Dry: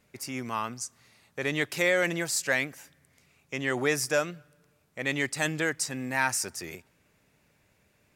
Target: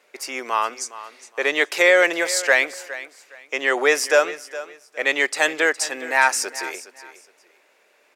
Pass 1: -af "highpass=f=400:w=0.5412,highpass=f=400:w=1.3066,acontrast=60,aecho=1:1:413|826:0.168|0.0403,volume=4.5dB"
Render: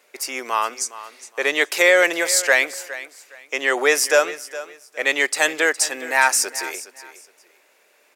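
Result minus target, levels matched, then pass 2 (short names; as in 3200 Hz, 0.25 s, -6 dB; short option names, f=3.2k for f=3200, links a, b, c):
8000 Hz band +4.5 dB
-af "highpass=f=400:w=0.5412,highpass=f=400:w=1.3066,highshelf=f=7.5k:g=-10.5,acontrast=60,aecho=1:1:413|826:0.168|0.0403,volume=4.5dB"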